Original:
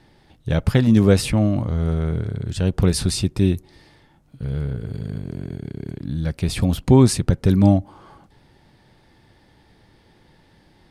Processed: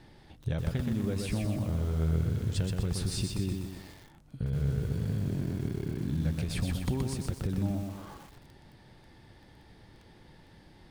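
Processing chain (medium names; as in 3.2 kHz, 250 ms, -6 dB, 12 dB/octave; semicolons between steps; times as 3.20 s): bass shelf 160 Hz +3 dB; compression 20:1, threshold -26 dBFS, peak gain reduction 21 dB; bit-crushed delay 124 ms, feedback 55%, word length 8-bit, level -3.5 dB; trim -2 dB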